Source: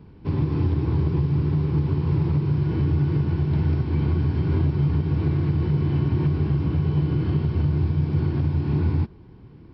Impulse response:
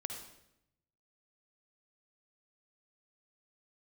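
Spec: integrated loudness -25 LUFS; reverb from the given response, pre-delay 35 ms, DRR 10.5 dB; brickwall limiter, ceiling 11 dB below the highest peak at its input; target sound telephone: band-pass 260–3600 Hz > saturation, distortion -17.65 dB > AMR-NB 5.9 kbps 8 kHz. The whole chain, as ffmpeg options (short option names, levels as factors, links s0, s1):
-filter_complex "[0:a]alimiter=limit=0.0794:level=0:latency=1,asplit=2[s0][s1];[1:a]atrim=start_sample=2205,adelay=35[s2];[s1][s2]afir=irnorm=-1:irlink=0,volume=0.316[s3];[s0][s3]amix=inputs=2:normalize=0,highpass=260,lowpass=3600,asoftclip=threshold=0.0282,volume=5.62" -ar 8000 -c:a libopencore_amrnb -b:a 5900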